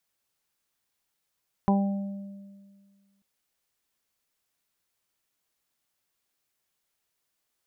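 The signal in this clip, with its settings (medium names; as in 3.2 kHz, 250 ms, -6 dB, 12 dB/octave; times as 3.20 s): additive tone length 1.54 s, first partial 198 Hz, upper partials -10/-11.5/-6/-8 dB, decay 1.82 s, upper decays 0.42/1.51/0.67/0.22 s, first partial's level -18.5 dB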